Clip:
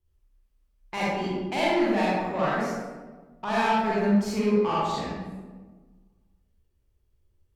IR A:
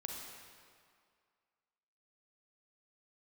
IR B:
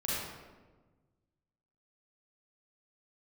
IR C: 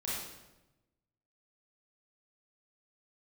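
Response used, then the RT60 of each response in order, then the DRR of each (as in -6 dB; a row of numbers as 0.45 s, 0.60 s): B; 2.1 s, 1.3 s, 1.0 s; -0.5 dB, -8.0 dB, -8.0 dB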